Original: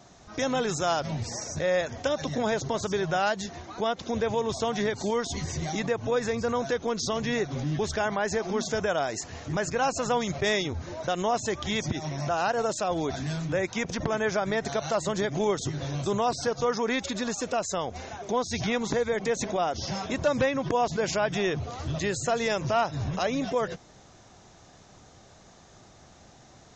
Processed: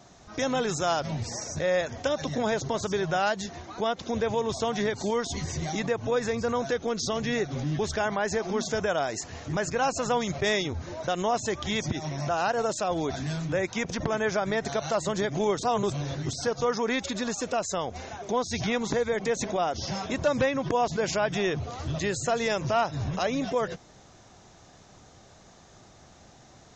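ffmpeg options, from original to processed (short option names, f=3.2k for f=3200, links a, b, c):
-filter_complex "[0:a]asettb=1/sr,asplit=3[a][b][c];[a]atrim=end=6.724[d];[b]atrim=start=6.72:end=7.53,asetpts=PTS-STARTPTS,afade=t=in:d=0.004:c=qsin,afade=t=out:st=0.806:d=0.004:c=qsin,bandreject=f=1k:w=8.7[e];[c]atrim=start=7.526[f];[d][e]acrossfade=d=0.004:c1=hsin:c2=qsin[g];[g][f]acrossfade=d=0.004:c1=qsin:c2=hsin,asplit=3[h][i][j];[h]atrim=end=15.632[k];[i]atrim=start=15.628:end=16.332,asetpts=PTS-STARTPTS,areverse[l];[j]atrim=start=16.328[m];[k][l]acrossfade=d=0.004:c1=hsin:c2=hsin[n];[n][m]acrossfade=d=0.004:c1=hsin:c2=hsin"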